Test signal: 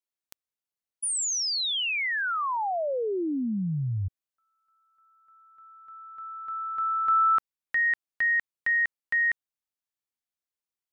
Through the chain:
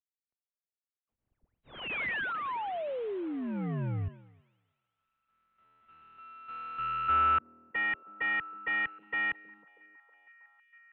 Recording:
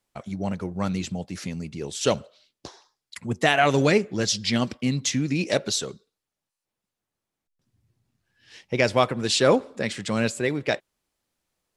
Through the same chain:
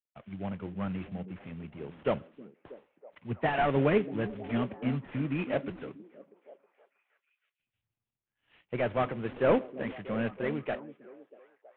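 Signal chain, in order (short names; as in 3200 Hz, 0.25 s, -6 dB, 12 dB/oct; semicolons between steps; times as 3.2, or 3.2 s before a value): CVSD 16 kbps; delay with a stepping band-pass 0.32 s, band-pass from 240 Hz, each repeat 0.7 oct, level -8.5 dB; three-band expander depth 40%; gain -6 dB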